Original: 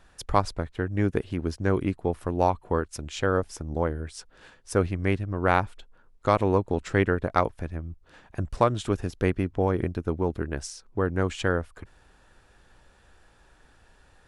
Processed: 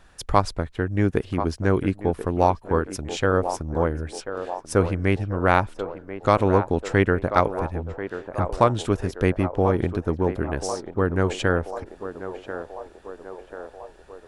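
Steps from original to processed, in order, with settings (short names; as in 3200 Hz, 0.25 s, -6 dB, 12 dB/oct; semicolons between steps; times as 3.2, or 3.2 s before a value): narrowing echo 1.038 s, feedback 68%, band-pass 680 Hz, level -8.5 dB; gain +3.5 dB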